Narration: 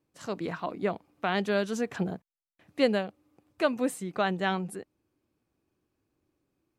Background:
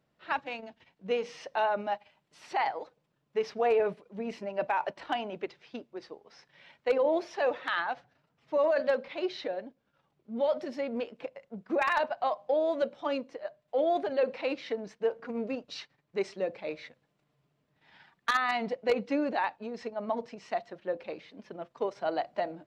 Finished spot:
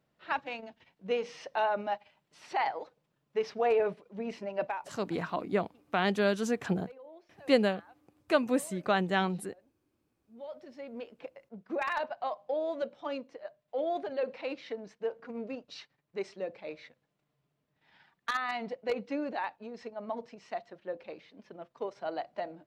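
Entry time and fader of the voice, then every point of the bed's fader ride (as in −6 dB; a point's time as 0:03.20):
4.70 s, 0.0 dB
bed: 0:04.65 −1 dB
0:05.00 −24.5 dB
0:09.86 −24.5 dB
0:11.20 −5 dB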